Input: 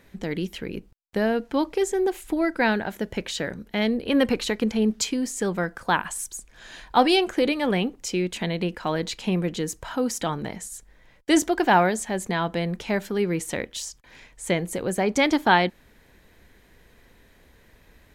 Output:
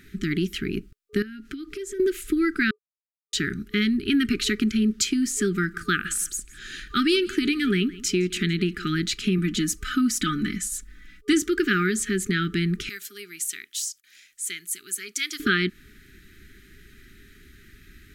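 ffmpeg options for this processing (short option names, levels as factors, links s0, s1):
-filter_complex "[0:a]asettb=1/sr,asplit=3[s0][s1][s2];[s0]atrim=end=1.224[s3];[s1]atrim=start=1.22:end=2,asetpts=PTS-STARTPTS,afade=t=in:d=0.004:c=qsin,afade=t=out:st=0.776:d=0.004:c=qsin,acompressor=threshold=0.0178:ratio=12:attack=3.2:release=140:knee=1:detection=peak[s4];[s2]atrim=start=1.996[s5];[s3][s4]acrossfade=d=0.004:c1=hsin:c2=qsin[s6];[s6][s5]acrossfade=d=0.004:c1=qsin:c2=hsin,asettb=1/sr,asplit=3[s7][s8][s9];[s7]atrim=end=5.524[s10];[s8]atrim=start=5.52:end=8.85,asetpts=PTS-STARTPTS,afade=t=in:d=0.004:c=qsin,afade=t=out:st=3.326:d=0.004:c=qsin,aecho=1:1:163|326:0.0794|0.0214,atrim=end_sample=146853[s11];[s9]atrim=start=8.846[s12];[s10][s11]acrossfade=d=0.004:c1=hsin:c2=qsin[s13];[s13][s12]acrossfade=d=0.004:c1=qsin:c2=hsin,asettb=1/sr,asplit=3[s14][s15][s16];[s14]atrim=end=9.384[s17];[s15]atrim=start=9.38:end=11.33,asetpts=PTS-STARTPTS,afade=t=in:d=0.004:c=qsin,afade=t=out:st=1.946:d=0.004:c=qsin,aecho=1:1:4:0.7,atrim=end_sample=85995[s18];[s16]atrim=start=11.326[s19];[s17][s18]acrossfade=d=0.004:c1=hsin:c2=qsin[s20];[s20][s19]acrossfade=d=0.004:c1=qsin:c2=hsin,asettb=1/sr,asplit=3[s21][s22][s23];[s21]atrim=end=12.894[s24];[s22]atrim=start=12.89:end=15.4,asetpts=PTS-STARTPTS,afade=t=in:d=0.004:c=qsin,afade=t=out:st=2.506:d=0.004:c=qsin,aderivative[s25];[s23]atrim=start=15.396[s26];[s24][s25]acrossfade=d=0.004:c1=hsin:c2=qsin[s27];[s27][s26]acrossfade=d=0.004:c1=qsin:c2=hsin,asplit=3[s28][s29][s30];[s28]atrim=end=2.71,asetpts=PTS-STARTPTS,afade=t=out:st=2.706:d=0.004:c=hsin[s31];[s29]atrim=start=2.71:end=3.33,asetpts=PTS-STARTPTS,volume=0[s32];[s30]atrim=start=3.33,asetpts=PTS-STARTPTS,afade=t=in:d=0.004:c=hsin[s33];[s31][s32][s33]concat=n=3:v=0:a=1,afftfilt=real='re*(1-between(b*sr/4096,420,1200))':imag='im*(1-between(b*sr/4096,420,1200))':win_size=4096:overlap=0.75,acompressor=threshold=0.0501:ratio=2.5,volume=1.88"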